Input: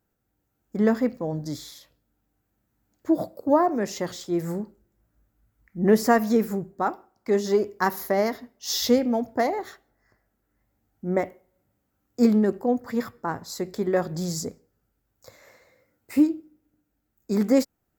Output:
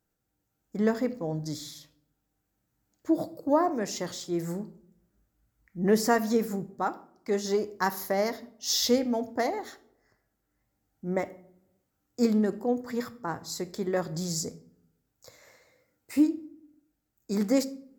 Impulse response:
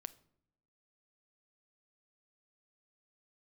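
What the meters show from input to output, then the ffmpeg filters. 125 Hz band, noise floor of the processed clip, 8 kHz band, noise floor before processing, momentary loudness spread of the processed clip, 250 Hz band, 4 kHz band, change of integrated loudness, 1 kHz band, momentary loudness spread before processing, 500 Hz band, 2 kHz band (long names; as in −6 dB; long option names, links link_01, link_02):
−3.5 dB, −80 dBFS, +1.0 dB, −76 dBFS, 14 LU, −4.5 dB, 0.0 dB, −4.0 dB, −4.5 dB, 14 LU, −4.5 dB, −3.5 dB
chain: -filter_complex "[0:a]equalizer=frequency=6400:width_type=o:width=2:gain=5.5[link_01];[1:a]atrim=start_sample=2205[link_02];[link_01][link_02]afir=irnorm=-1:irlink=0"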